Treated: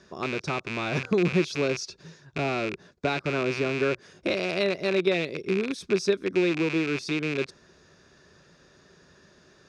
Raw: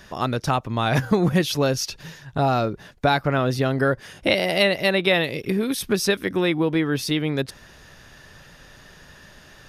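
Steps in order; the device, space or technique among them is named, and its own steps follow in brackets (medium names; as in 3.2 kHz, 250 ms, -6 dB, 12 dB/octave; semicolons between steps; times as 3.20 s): car door speaker with a rattle (rattle on loud lows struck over -31 dBFS, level -9 dBFS; cabinet simulation 82–7300 Hz, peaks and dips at 120 Hz -7 dB, 170 Hz +3 dB, 380 Hz +9 dB, 830 Hz -6 dB, 1.9 kHz -6 dB, 3 kHz -9 dB); trim -7.5 dB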